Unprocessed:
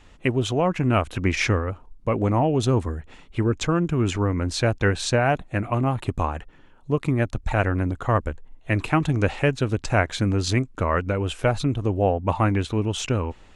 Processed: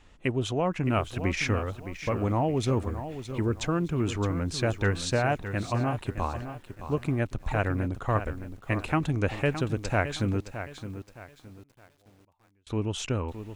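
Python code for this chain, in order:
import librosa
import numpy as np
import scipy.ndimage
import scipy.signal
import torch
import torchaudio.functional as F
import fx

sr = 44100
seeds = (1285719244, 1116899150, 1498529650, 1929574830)

y = fx.gate_flip(x, sr, shuts_db=-27.0, range_db=-41, at=(10.4, 12.67))
y = fx.echo_crushed(y, sr, ms=616, feedback_pct=35, bits=8, wet_db=-10.5)
y = F.gain(torch.from_numpy(y), -5.5).numpy()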